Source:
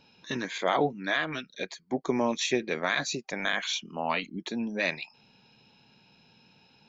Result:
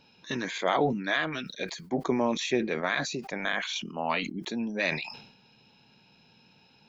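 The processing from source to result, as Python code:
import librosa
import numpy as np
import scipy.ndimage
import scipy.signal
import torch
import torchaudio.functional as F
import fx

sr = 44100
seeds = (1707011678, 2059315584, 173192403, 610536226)

y = fx.high_shelf(x, sr, hz=4000.0, db=-8.0, at=(2.01, 3.76))
y = fx.sustainer(y, sr, db_per_s=74.0)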